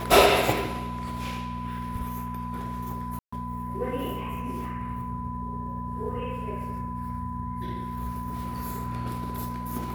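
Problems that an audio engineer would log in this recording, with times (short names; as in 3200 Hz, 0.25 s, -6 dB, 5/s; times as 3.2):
hum 60 Hz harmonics 4 -35 dBFS
tone 1000 Hz -35 dBFS
3.19–3.33 gap 0.135 s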